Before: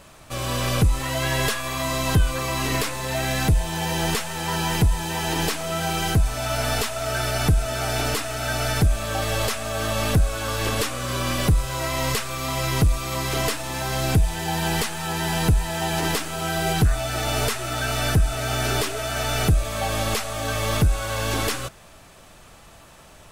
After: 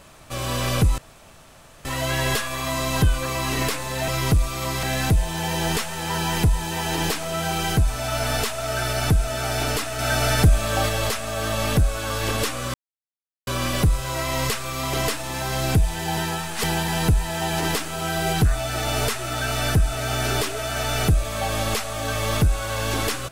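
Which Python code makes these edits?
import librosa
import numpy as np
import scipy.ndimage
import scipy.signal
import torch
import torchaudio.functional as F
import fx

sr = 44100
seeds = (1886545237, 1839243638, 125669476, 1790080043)

y = fx.edit(x, sr, fx.insert_room_tone(at_s=0.98, length_s=0.87),
    fx.clip_gain(start_s=8.37, length_s=0.9, db=3.5),
    fx.insert_silence(at_s=11.12, length_s=0.73),
    fx.move(start_s=12.58, length_s=0.75, to_s=3.21),
    fx.reverse_span(start_s=14.57, length_s=0.71), tone=tone)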